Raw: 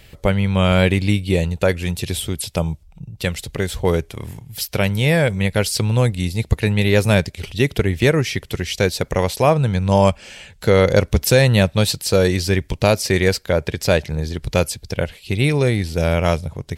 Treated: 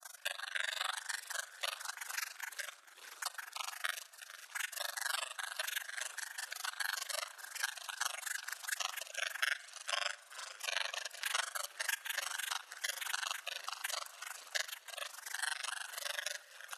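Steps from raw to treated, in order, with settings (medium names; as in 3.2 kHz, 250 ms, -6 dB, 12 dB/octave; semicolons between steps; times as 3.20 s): steep high-pass 810 Hz 72 dB/octave; doubling 41 ms -7 dB; spectral gate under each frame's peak -20 dB weak; brick-wall FIR low-pass 13 kHz; peaking EQ 1.6 kHz +11.5 dB 0.48 oct; granulator 41 ms, grains 24 per s, spray 31 ms, pitch spread up and down by 0 st; treble shelf 7.1 kHz -4.5 dB; gate with hold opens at -60 dBFS; on a send at -16 dB: reverberation RT60 0.90 s, pre-delay 5 ms; on the sum: vibrato 1.3 Hz 5.6 cents; frequency-shifting echo 446 ms, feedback 64%, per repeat -57 Hz, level -23.5 dB; three bands compressed up and down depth 70%; trim +4 dB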